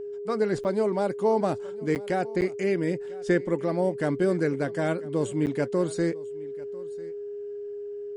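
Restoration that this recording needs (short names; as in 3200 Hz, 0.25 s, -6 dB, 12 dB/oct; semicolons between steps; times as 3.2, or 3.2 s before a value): notch 410 Hz, Q 30; interpolate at 0.64/1.95/2.41/5.46, 9 ms; inverse comb 0.996 s -21 dB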